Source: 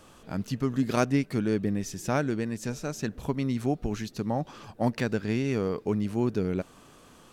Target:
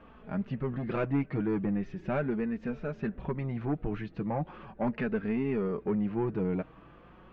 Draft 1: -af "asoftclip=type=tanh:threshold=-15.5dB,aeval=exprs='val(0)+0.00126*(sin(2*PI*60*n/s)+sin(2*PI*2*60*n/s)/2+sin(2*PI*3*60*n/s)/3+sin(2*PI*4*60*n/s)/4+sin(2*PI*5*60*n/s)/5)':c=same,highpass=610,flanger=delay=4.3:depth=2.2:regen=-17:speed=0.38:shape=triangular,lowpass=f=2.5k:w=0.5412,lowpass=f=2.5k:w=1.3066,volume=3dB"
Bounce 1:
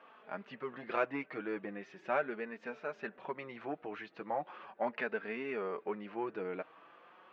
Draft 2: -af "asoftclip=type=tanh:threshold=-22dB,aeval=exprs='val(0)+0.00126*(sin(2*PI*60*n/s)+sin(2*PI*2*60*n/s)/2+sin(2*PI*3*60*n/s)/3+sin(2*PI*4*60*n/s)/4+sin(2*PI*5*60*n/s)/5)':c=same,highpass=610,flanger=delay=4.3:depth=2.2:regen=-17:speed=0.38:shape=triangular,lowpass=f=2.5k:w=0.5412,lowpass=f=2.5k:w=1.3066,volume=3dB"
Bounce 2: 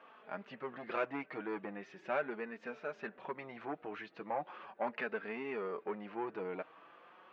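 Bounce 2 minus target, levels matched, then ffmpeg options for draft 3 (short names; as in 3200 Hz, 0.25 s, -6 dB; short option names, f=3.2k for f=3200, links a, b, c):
500 Hz band +3.0 dB
-af "asoftclip=type=tanh:threshold=-22dB,aeval=exprs='val(0)+0.00126*(sin(2*PI*60*n/s)+sin(2*PI*2*60*n/s)/2+sin(2*PI*3*60*n/s)/3+sin(2*PI*4*60*n/s)/4+sin(2*PI*5*60*n/s)/5)':c=same,flanger=delay=4.3:depth=2.2:regen=-17:speed=0.38:shape=triangular,lowpass=f=2.5k:w=0.5412,lowpass=f=2.5k:w=1.3066,volume=3dB"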